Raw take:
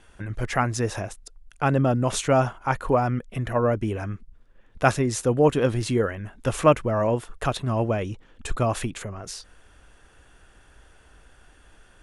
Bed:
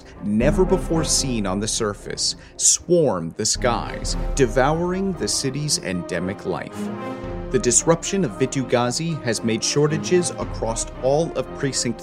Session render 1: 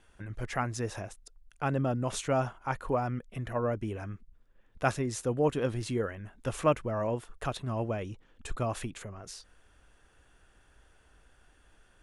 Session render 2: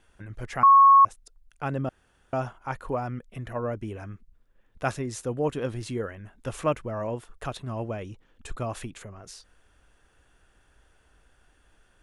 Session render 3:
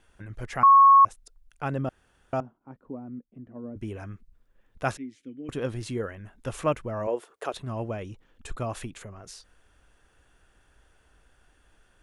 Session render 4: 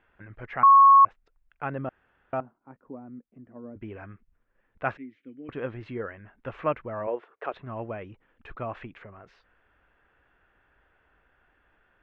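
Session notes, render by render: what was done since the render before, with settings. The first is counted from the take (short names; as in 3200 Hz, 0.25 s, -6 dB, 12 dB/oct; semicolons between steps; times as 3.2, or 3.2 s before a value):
gain -8.5 dB
0.63–1.05 bleep 1100 Hz -11 dBFS; 1.89–2.33 room tone
2.4–3.76 band-pass 250 Hz, Q 2.8; 4.97–5.49 vowel filter i; 7.07–7.54 resonant high-pass 410 Hz, resonance Q 2.1
LPF 2300 Hz 24 dB/oct; tilt +2 dB/oct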